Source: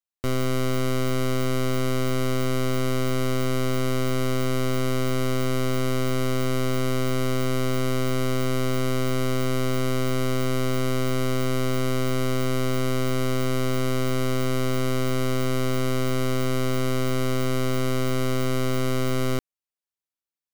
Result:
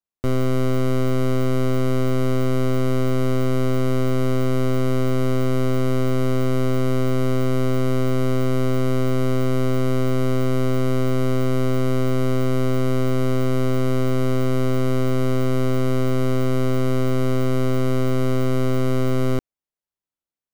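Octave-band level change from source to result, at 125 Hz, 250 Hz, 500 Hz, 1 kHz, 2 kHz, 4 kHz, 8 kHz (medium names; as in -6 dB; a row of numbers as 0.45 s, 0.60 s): +5.0 dB, +4.5 dB, +4.0 dB, +0.5 dB, -1.5 dB, -4.0 dB, -4.5 dB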